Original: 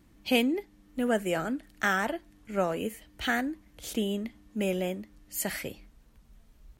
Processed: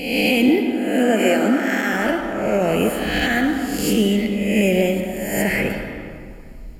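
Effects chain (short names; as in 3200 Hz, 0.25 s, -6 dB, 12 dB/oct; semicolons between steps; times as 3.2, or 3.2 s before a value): spectral swells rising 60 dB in 0.92 s; 0.48–1.93 steep high-pass 200 Hz 48 dB/oct; 5–5.7 resonant high shelf 3400 Hz -9.5 dB, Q 1.5; limiter -20.5 dBFS, peak gain reduction 11.5 dB; reverb RT60 2.3 s, pre-delay 50 ms, DRR 4.5 dB; gain +7 dB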